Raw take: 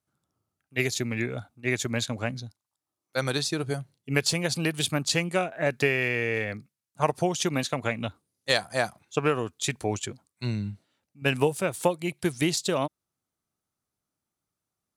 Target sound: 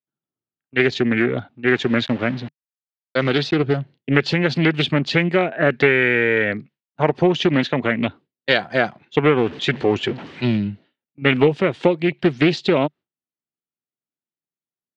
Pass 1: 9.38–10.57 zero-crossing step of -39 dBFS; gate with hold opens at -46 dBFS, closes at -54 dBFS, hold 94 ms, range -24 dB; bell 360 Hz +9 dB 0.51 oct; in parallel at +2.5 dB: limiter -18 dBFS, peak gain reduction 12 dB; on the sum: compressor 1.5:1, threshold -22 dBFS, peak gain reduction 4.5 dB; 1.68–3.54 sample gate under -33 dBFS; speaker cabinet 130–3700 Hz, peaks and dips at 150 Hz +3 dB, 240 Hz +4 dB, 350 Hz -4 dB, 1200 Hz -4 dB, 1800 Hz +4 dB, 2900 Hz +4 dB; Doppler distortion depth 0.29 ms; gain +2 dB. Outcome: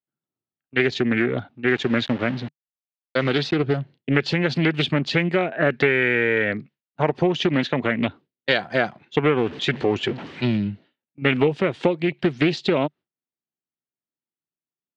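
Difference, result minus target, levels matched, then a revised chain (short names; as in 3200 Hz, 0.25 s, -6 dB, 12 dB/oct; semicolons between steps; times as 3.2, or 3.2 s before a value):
compressor: peak gain reduction +4.5 dB
9.38–10.57 zero-crossing step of -39 dBFS; gate with hold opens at -46 dBFS, closes at -54 dBFS, hold 94 ms, range -24 dB; bell 360 Hz +9 dB 0.51 oct; in parallel at +2.5 dB: limiter -18 dBFS, peak gain reduction 12 dB; 1.68–3.54 on the sum: sample gate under -33 dBFS; speaker cabinet 130–3700 Hz, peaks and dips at 150 Hz +3 dB, 240 Hz +4 dB, 350 Hz -4 dB, 1200 Hz -4 dB, 1800 Hz +4 dB, 2900 Hz +4 dB; Doppler distortion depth 0.29 ms; gain +2 dB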